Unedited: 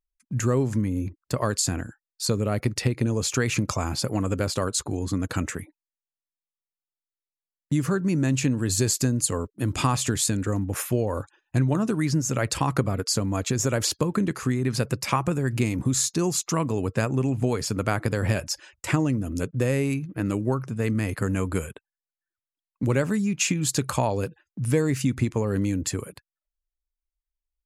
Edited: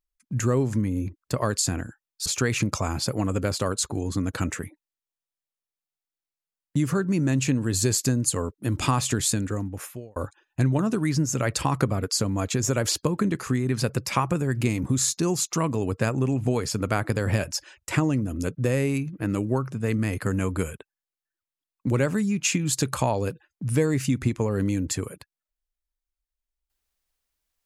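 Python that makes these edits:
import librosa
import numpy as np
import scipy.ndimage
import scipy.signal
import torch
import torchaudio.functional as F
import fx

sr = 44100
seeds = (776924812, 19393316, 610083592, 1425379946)

y = fx.edit(x, sr, fx.cut(start_s=2.26, length_s=0.96),
    fx.fade_out_span(start_s=10.29, length_s=0.83), tone=tone)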